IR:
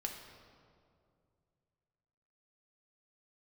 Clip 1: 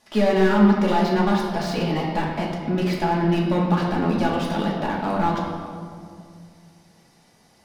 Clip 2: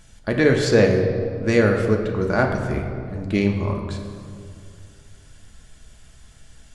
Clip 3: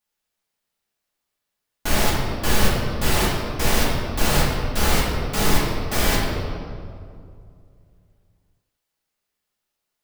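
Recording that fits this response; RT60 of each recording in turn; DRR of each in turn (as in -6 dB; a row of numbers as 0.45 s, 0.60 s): 2; 2.3 s, 2.3 s, 2.3 s; -3.5 dB, 1.5 dB, -7.5 dB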